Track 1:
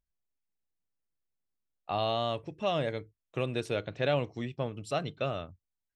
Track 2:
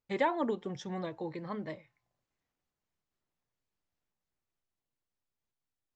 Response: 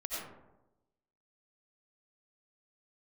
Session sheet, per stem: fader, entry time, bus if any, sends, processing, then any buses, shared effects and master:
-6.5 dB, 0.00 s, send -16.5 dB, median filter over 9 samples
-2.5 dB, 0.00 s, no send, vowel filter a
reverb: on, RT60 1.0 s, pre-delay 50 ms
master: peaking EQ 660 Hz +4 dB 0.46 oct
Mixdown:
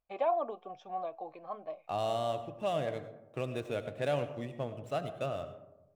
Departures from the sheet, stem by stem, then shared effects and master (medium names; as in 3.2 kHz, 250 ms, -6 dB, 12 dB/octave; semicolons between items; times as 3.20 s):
stem 1: send -16.5 dB -> -10 dB; stem 2 -2.5 dB -> +7.5 dB